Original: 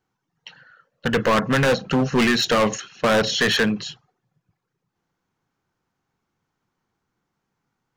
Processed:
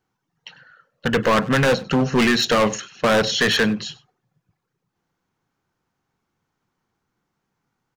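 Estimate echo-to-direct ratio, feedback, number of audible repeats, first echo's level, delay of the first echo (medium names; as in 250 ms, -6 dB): -21.5 dB, no regular repeats, 1, -21.5 dB, 98 ms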